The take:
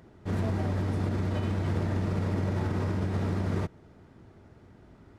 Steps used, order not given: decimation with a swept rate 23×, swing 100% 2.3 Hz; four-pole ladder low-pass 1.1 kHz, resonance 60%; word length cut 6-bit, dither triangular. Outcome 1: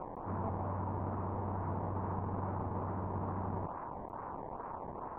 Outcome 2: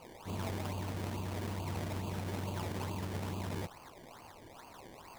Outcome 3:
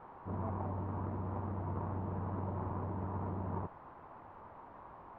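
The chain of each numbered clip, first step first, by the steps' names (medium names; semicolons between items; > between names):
word length cut > decimation with a swept rate > four-pole ladder low-pass; word length cut > four-pole ladder low-pass > decimation with a swept rate; decimation with a swept rate > word length cut > four-pole ladder low-pass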